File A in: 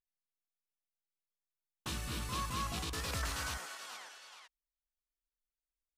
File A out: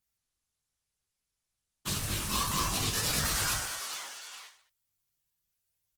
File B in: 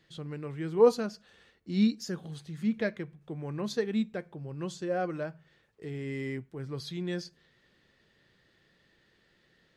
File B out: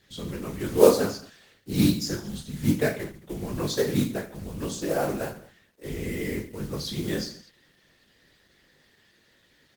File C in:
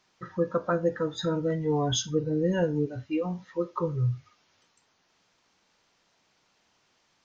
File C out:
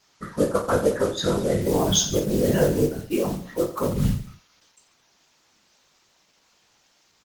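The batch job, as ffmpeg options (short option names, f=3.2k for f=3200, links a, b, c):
-filter_complex "[0:a]acrusher=bits=5:mode=log:mix=0:aa=0.000001,highshelf=f=4.6k:g=10,afftfilt=real='hypot(re,im)*cos(2*PI*random(0))':imag='hypot(re,im)*sin(2*PI*random(1))':win_size=512:overlap=0.75,asplit=2[a][b];[b]aecho=0:1:20|48|87.2|142.1|218.9:0.631|0.398|0.251|0.158|0.1[c];[a][c]amix=inputs=2:normalize=0,volume=9dB" -ar 48000 -c:a libopus -b:a 16k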